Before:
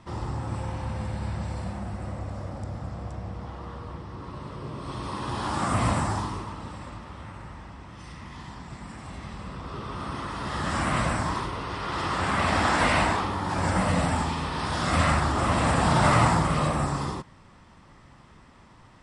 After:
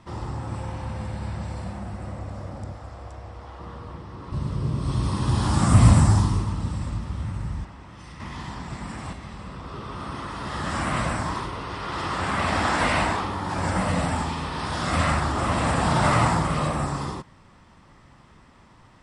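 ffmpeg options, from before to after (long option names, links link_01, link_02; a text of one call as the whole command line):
ffmpeg -i in.wav -filter_complex "[0:a]asettb=1/sr,asplit=3[link_01][link_02][link_03];[link_01]atrim=end=2.724[link_04];[link_02]atrim=start=2.72:end=3.6,asetpts=PTS-STARTPTS,afade=type=in:duration=0.004:curve=qsin,afade=type=out:start_time=0.876:duration=0.004:curve=qsin,equalizer=frequency=170:width_type=o:width=1.1:gain=-14.5[link_05];[link_03]atrim=start=3.596[link_06];[link_04][link_05]acrossfade=duration=0.004:curve1=hsin:curve2=qsin[link_07];[link_07][link_06]acrossfade=duration=0.004:curve1=qsin:curve2=hsin,asettb=1/sr,asplit=3[link_08][link_09][link_10];[link_08]atrim=end=4.324[link_11];[link_09]atrim=start=4.32:end=7.65,asetpts=PTS-STARTPTS,afade=type=in:duration=0.004:curve=qsin,afade=type=out:start_time=3.326:duration=0.004:curve=qsin,bass=frequency=250:gain=14,treble=frequency=4000:gain=8[link_12];[link_10]atrim=start=7.646[link_13];[link_11][link_12]acrossfade=duration=0.004:curve1=hsin:curve2=qsin[link_14];[link_14][link_13]acrossfade=duration=0.004:curve1=qsin:curve2=hsin,asplit=3[link_15][link_16][link_17];[link_15]atrim=end=8.202[link_18];[link_16]atrim=start=8.198:end=9.132,asetpts=PTS-STARTPTS,volume=6dB[link_19];[link_17]atrim=start=9.128[link_20];[link_18][link_19]acrossfade=duration=0.004:curve1=hsin:curve2=hsin[link_21];[link_21][link_20]acrossfade=duration=0.004:curve1=hsin:curve2=hsin" out.wav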